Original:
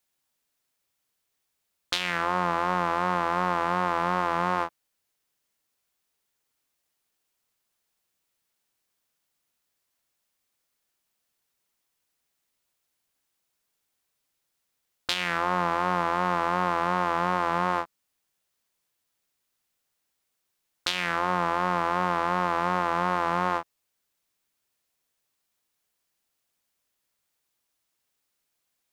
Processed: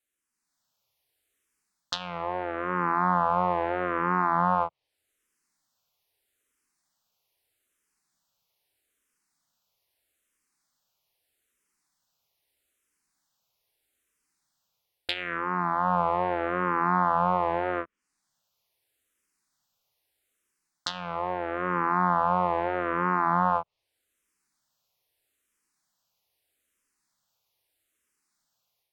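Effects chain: low-pass that closes with the level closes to 1.7 kHz, closed at -25 dBFS; level rider gain up to 7.5 dB; barber-pole phaser -0.79 Hz; trim -3 dB

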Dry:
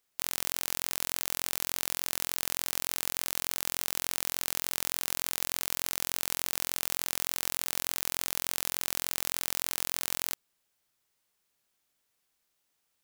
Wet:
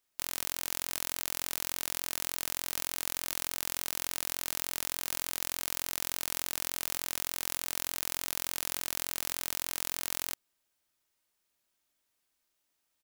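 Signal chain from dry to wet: comb 3.2 ms, depth 31%; trim -2.5 dB

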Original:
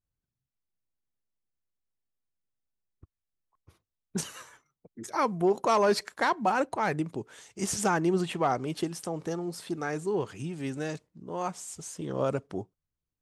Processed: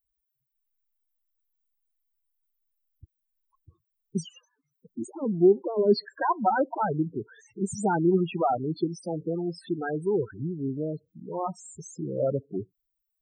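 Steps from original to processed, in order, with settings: added noise blue -71 dBFS; loudest bins only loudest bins 8; 4.24–6.01 s: FFT filter 180 Hz 0 dB, 280 Hz +10 dB, 1.4 kHz -29 dB, 2.9 kHz +1 dB; trim +4 dB

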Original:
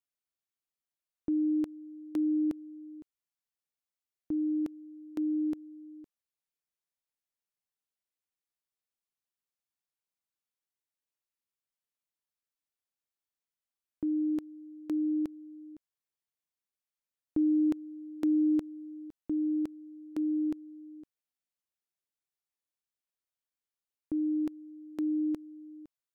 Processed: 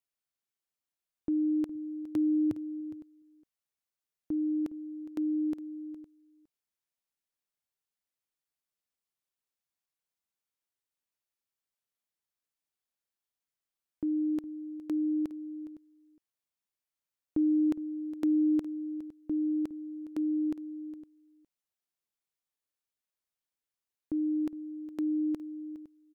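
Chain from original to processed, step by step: 1.75–2.81 s: peaking EQ 110 Hz +14 dB 0.91 oct; delay 412 ms -15.5 dB

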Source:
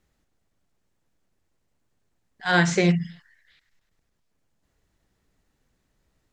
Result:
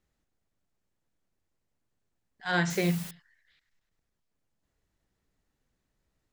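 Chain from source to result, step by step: 2.70–3.11 s: word length cut 6-bit, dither triangular; trim -7.5 dB

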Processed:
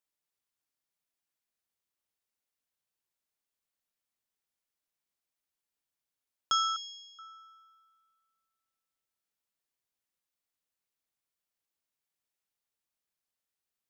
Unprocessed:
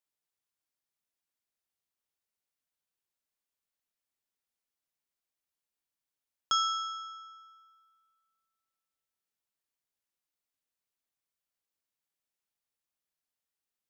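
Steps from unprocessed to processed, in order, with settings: 6.76–7.19 s: elliptic high-pass 2.2 kHz, stop band 40 dB

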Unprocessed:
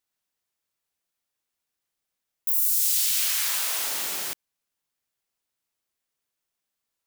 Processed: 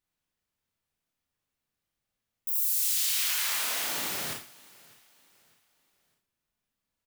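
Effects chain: tone controls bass +11 dB, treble -5 dB; feedback delay 604 ms, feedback 39%, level -23.5 dB; Schroeder reverb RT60 0.37 s, combs from 26 ms, DRR 1.5 dB; trim -2 dB

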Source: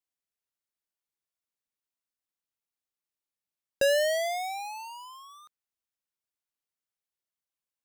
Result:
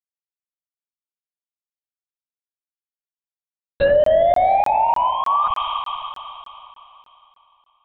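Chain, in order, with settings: peaking EQ 120 Hz +4.5 dB 2.6 oct; fuzz box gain 57 dB, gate -57 dBFS; LPC vocoder at 8 kHz whisper; on a send at -7 dB: reverberation RT60 3.2 s, pre-delay 77 ms; on the sum: low-pass that closes with the level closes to 820 Hz, closed at -9.5 dBFS; crackling interface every 0.30 s, samples 1024, zero, from 0.44 s

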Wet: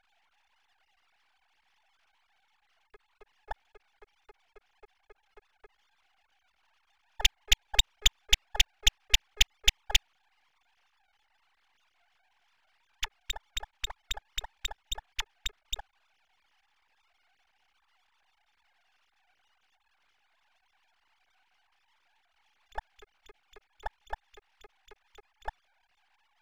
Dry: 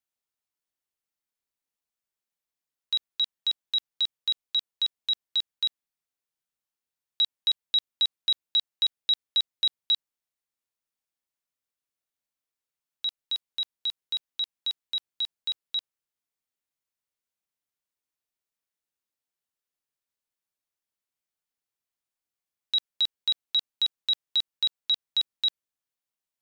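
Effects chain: formants replaced by sine waves; half-wave rectifier

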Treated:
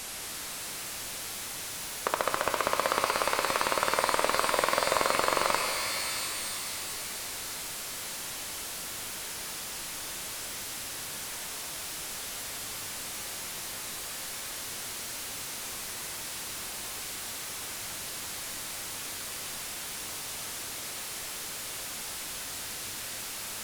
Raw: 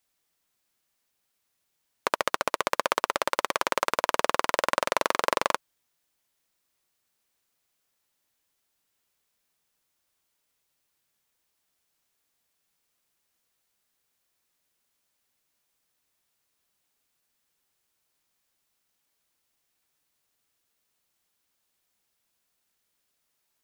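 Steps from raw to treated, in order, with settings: one-bit delta coder 64 kbps, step -32 dBFS; pitch-shifted reverb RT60 3.2 s, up +12 st, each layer -2 dB, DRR 5.5 dB

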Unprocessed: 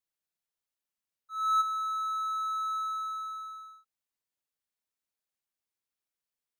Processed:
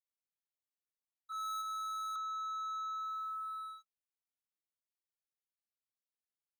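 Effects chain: 1.32–2.16 s: high-pass 1.4 kHz 12 dB/octave; waveshaping leveller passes 3; compression, threshold -31 dBFS, peak gain reduction 5.5 dB; trim -8 dB

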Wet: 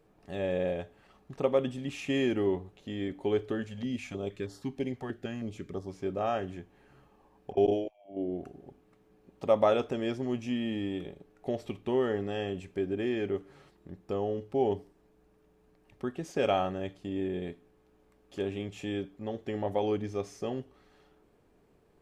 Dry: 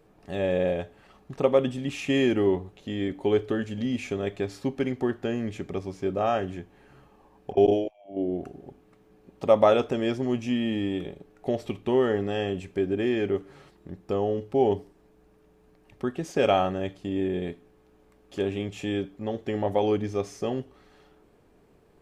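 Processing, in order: 3.67–5.89 s: step-sequenced notch 6.3 Hz 310–2400 Hz; trim -5.5 dB

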